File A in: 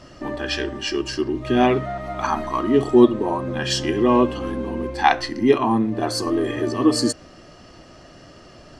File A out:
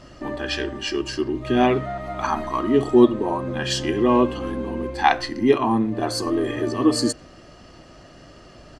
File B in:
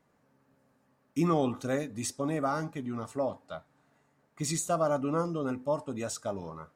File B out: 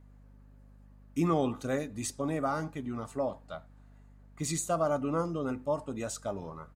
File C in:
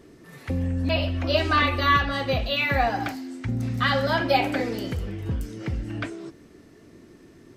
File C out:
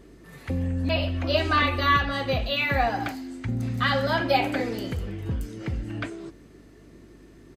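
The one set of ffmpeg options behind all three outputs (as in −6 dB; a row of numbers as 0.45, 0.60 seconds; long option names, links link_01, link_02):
-filter_complex "[0:a]bandreject=frequency=5500:width=13,aeval=exprs='val(0)+0.00224*(sin(2*PI*50*n/s)+sin(2*PI*2*50*n/s)/2+sin(2*PI*3*50*n/s)/3+sin(2*PI*4*50*n/s)/4+sin(2*PI*5*50*n/s)/5)':channel_layout=same,asplit=2[link_01][link_02];[link_02]adelay=90,highpass=300,lowpass=3400,asoftclip=type=hard:threshold=-10.5dB,volume=-27dB[link_03];[link_01][link_03]amix=inputs=2:normalize=0,volume=-1dB"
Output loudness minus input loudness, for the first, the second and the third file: −1.0, −1.0, −1.0 LU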